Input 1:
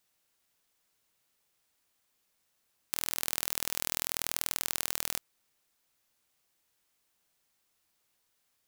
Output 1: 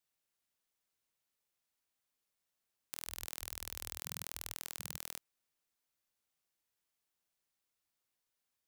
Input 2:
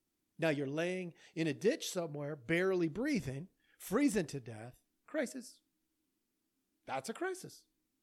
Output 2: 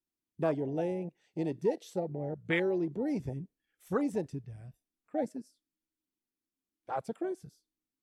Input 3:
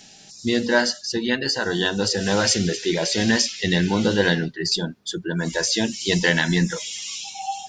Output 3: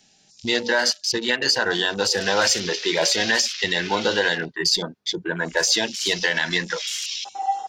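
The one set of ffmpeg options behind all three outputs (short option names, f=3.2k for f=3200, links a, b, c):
-filter_complex "[0:a]afwtdn=0.0158,acrossover=split=460|3400[a][b][c];[a]acompressor=threshold=-37dB:ratio=12[d];[d][b][c]amix=inputs=3:normalize=0,alimiter=limit=-14dB:level=0:latency=1:release=118,volume=5.5dB"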